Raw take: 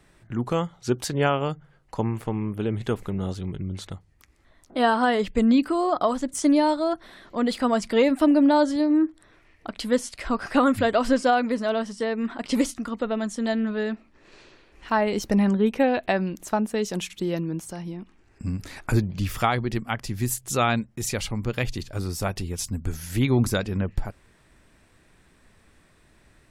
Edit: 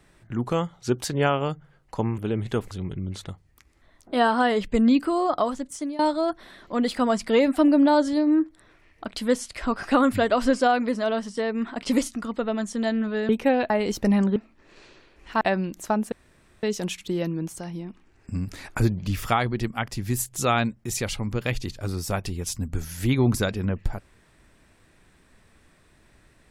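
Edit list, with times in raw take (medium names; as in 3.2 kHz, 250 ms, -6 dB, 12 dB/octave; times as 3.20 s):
2.18–2.53 s: delete
3.06–3.34 s: delete
5.96–6.62 s: fade out, to -19.5 dB
13.92–14.97 s: swap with 15.63–16.04 s
16.75 s: insert room tone 0.51 s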